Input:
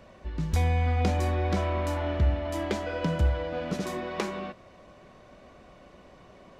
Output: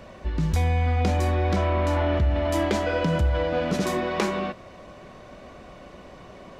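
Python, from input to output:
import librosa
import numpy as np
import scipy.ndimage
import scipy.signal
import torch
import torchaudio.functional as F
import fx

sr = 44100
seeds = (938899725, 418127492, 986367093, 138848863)

p1 = fx.high_shelf(x, sr, hz=8000.0, db=-11.5, at=(1.56, 2.17))
p2 = fx.over_compress(p1, sr, threshold_db=-30.0, ratio=-1.0)
y = p1 + F.gain(torch.from_numpy(p2), 0.0).numpy()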